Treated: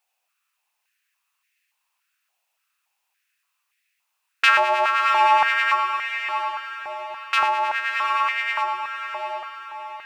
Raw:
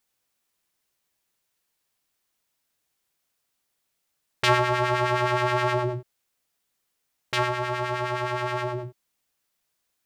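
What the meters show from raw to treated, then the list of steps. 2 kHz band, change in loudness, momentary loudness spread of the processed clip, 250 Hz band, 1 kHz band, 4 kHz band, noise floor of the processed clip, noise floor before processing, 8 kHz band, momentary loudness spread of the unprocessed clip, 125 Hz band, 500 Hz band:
+8.0 dB, +4.5 dB, 15 LU, under -15 dB, +7.5 dB, +4.5 dB, -77 dBFS, -78 dBFS, no reading, 10 LU, under -30 dB, -3.5 dB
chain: peaking EQ 2.6 kHz +11 dB 0.27 oct; echo that smears into a reverb 734 ms, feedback 43%, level -7 dB; step-sequenced high-pass 3.5 Hz 740–1900 Hz; trim -1.5 dB

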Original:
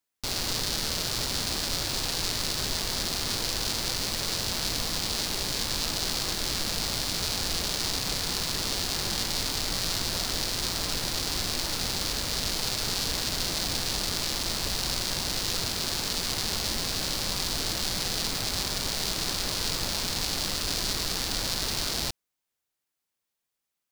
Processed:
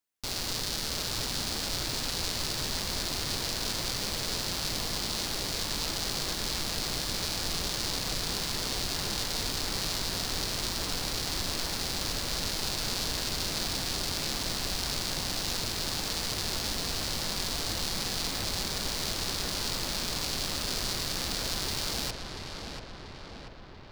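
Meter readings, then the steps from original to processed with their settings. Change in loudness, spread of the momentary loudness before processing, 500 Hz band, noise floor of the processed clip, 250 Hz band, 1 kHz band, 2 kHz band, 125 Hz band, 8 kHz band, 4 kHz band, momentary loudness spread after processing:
-3.0 dB, 1 LU, -1.5 dB, -43 dBFS, -1.5 dB, -2.0 dB, -2.0 dB, -1.5 dB, -3.5 dB, -3.0 dB, 1 LU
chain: filtered feedback delay 687 ms, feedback 68%, low-pass 3.1 kHz, level -5 dB; trim -3.5 dB

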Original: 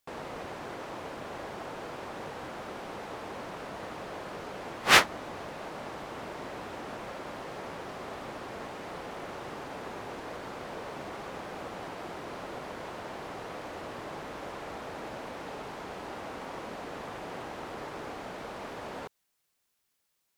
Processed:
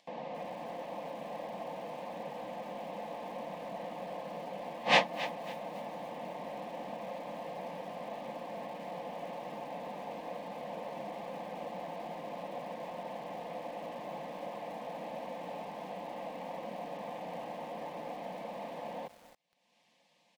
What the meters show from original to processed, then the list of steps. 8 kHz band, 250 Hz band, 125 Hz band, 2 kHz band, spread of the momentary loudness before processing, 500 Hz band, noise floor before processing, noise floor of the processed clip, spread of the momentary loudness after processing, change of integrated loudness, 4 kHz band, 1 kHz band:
-15.0 dB, -3.0 dB, -4.5 dB, -7.0 dB, 1 LU, 0.0 dB, -78 dBFS, -70 dBFS, 1 LU, -4.0 dB, -6.5 dB, -2.0 dB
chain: band-pass 180–2500 Hz; static phaser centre 370 Hz, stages 6; upward compressor, threshold -56 dBFS; comb 5.7 ms, depth 40%; bit-crushed delay 275 ms, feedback 35%, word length 8-bit, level -13.5 dB; trim +1.5 dB

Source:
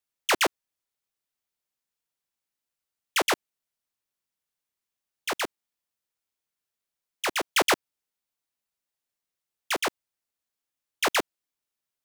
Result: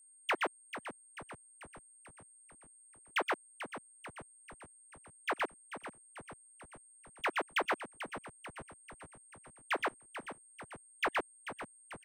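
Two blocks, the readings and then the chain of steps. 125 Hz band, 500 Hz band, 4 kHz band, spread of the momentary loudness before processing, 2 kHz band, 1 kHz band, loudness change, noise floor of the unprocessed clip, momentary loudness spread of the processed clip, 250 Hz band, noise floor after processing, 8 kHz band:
-4.5 dB, -8.0 dB, -14.5 dB, 9 LU, -7.0 dB, -6.5 dB, -11.5 dB, under -85 dBFS, 22 LU, -9.0 dB, -62 dBFS, -15.5 dB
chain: harmonic-percussive separation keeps percussive; three-band isolator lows -21 dB, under 190 Hz, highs -23 dB, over 2.4 kHz; compression, threshold -30 dBFS, peak gain reduction 11.5 dB; whistle 8.6 kHz -59 dBFS; frequency-shifting echo 440 ms, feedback 57%, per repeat -120 Hz, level -11 dB

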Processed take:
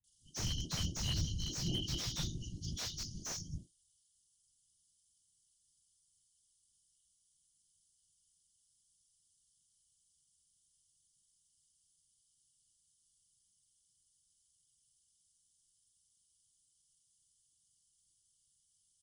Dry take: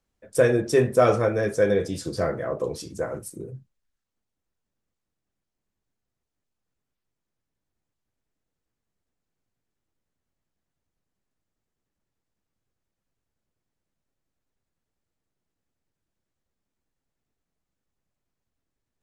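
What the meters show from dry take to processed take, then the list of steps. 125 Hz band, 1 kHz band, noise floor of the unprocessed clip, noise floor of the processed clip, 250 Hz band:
-9.0 dB, -24.0 dB, -84 dBFS, -76 dBFS, -16.0 dB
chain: knee-point frequency compression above 2.3 kHz 1.5:1; FFT band-reject 210–2900 Hz; tilt EQ +4 dB/octave; in parallel at -1.5 dB: compression, threshold -41 dBFS, peak gain reduction 16 dB; on the sum: whisper effect; saturation -23 dBFS, distortion -15 dB; fifteen-band graphic EQ 250 Hz -10 dB, 630 Hz +8 dB, 4 kHz -11 dB; bands offset in time lows, highs 40 ms, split 220 Hz; slew-rate limiter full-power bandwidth 29 Hz; trim +5 dB

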